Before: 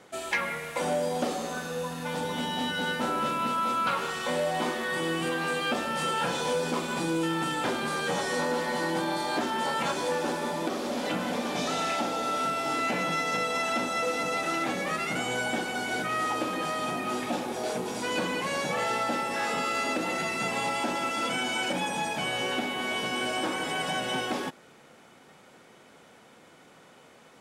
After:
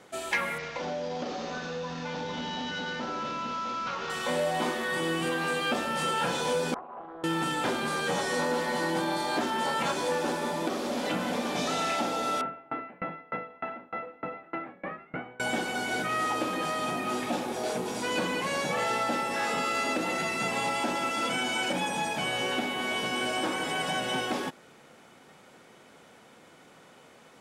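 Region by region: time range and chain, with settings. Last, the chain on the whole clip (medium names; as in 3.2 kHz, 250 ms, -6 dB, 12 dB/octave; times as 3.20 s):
0.58–4.10 s: CVSD coder 32 kbps + compression 3:1, threshold -31 dBFS
6.74–7.24 s: cascade formant filter a + peaking EQ 360 Hz +7.5 dB 1.8 oct + loudspeaker Doppler distortion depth 0.34 ms
12.41–15.40 s: low-pass 2.1 kHz 24 dB/octave + sawtooth tremolo in dB decaying 3.3 Hz, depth 29 dB
whole clip: none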